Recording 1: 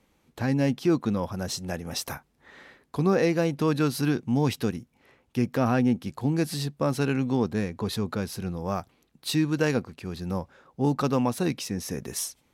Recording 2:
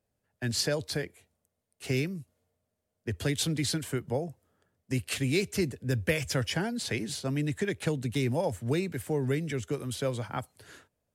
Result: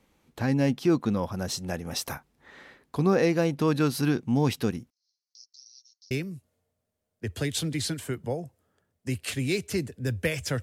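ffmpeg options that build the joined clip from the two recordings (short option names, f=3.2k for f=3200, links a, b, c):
-filter_complex "[0:a]asettb=1/sr,asplit=3[a][b][c];[a]atrim=end=4.904[d];[b]atrim=start=4.9:end=6.11,asetpts=PTS-STARTPTS,afade=t=in:d=0.004:c=qsin,afade=t=out:st=1.206:d=0.004:c=qsin,asuperpass=centerf=5200:order=8:qfactor=2.6[e];[c]atrim=start=6.106[f];[d][e]acrossfade=d=0.004:c1=hsin:c2=qsin[g];[g][f]acrossfade=d=0.004:c1=qsin:c2=hsin,apad=whole_dur=10.62,atrim=end=10.62,atrim=end=6.112[h];[1:a]atrim=start=1.948:end=6.46[i];[h][i]acrossfade=d=0.004:c1=hsin:c2=hsin"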